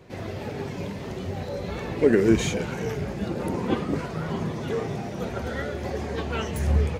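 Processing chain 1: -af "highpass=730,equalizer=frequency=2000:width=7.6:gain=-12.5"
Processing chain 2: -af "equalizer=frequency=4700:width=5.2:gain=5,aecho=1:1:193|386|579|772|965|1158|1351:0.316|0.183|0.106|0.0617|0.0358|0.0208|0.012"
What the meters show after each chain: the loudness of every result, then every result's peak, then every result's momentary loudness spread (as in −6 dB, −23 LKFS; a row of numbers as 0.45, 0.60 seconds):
−36.5, −27.0 LKFS; −16.0, −6.0 dBFS; 11, 12 LU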